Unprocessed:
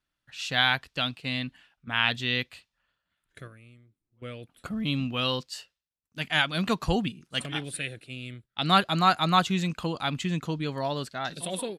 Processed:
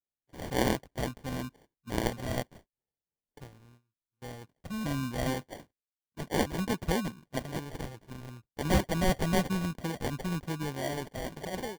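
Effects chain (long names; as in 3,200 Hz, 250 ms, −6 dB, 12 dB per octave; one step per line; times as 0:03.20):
noise gate −53 dBFS, range −17 dB
sample-rate reduction 1,300 Hz, jitter 0%
level −4 dB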